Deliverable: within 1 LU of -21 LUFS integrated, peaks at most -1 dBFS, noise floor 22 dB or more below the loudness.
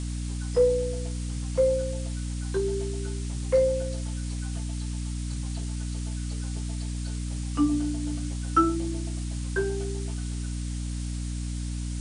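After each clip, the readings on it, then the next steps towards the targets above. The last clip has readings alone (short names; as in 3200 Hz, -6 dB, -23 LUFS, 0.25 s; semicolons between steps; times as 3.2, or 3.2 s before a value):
hum 60 Hz; harmonics up to 300 Hz; hum level -29 dBFS; noise floor -32 dBFS; noise floor target -52 dBFS; loudness -29.5 LUFS; peak -9.5 dBFS; loudness target -21.0 LUFS
-> de-hum 60 Hz, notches 5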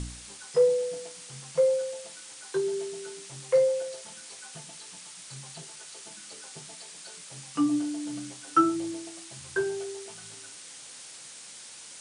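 hum none; noise floor -46 dBFS; noise floor target -51 dBFS
-> noise print and reduce 6 dB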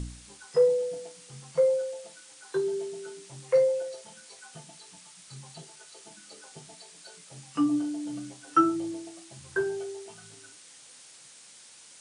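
noise floor -52 dBFS; loudness -28.5 LUFS; peak -10.0 dBFS; loudness target -21.0 LUFS
-> gain +7.5 dB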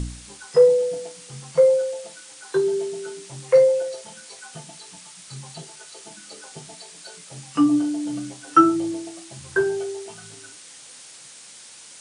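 loudness -21.0 LUFS; peak -2.5 dBFS; noise floor -45 dBFS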